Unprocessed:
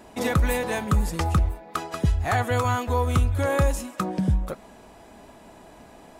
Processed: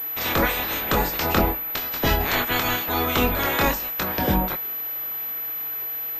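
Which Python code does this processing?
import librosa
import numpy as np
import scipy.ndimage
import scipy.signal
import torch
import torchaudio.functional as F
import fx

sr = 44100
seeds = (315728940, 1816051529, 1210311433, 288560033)

y = fx.spec_clip(x, sr, under_db=27)
y = fx.rider(y, sr, range_db=10, speed_s=2.0)
y = fx.dmg_noise_band(y, sr, seeds[0], low_hz=270.0, high_hz=2500.0, level_db=-47.0)
y = fx.chorus_voices(y, sr, voices=6, hz=0.46, base_ms=24, depth_ms=3.9, mix_pct=35)
y = fx.pwm(y, sr, carrier_hz=12000.0)
y = y * librosa.db_to_amplitude(2.5)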